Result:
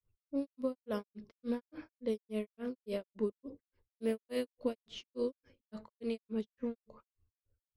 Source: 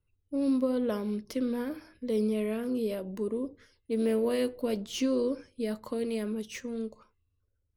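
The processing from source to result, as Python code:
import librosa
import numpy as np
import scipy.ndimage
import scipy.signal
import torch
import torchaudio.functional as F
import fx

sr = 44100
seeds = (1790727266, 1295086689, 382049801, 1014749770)

y = fx.env_lowpass(x, sr, base_hz=1200.0, full_db=-24.5)
y = fx.rider(y, sr, range_db=4, speed_s=0.5)
y = fx.granulator(y, sr, seeds[0], grain_ms=184.0, per_s=3.5, spray_ms=25.0, spread_st=0)
y = y * 10.0 ** (-2.0 / 20.0)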